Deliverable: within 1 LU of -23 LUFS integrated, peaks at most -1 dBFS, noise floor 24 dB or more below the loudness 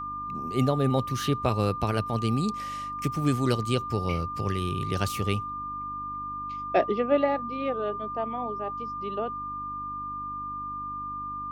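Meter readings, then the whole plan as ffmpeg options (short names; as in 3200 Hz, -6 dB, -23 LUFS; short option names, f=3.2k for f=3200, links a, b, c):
hum 50 Hz; harmonics up to 300 Hz; hum level -47 dBFS; steady tone 1200 Hz; tone level -32 dBFS; loudness -29.0 LUFS; peak -10.5 dBFS; loudness target -23.0 LUFS
-> -af "bandreject=f=50:t=h:w=4,bandreject=f=100:t=h:w=4,bandreject=f=150:t=h:w=4,bandreject=f=200:t=h:w=4,bandreject=f=250:t=h:w=4,bandreject=f=300:t=h:w=4"
-af "bandreject=f=1.2k:w=30"
-af "volume=6dB"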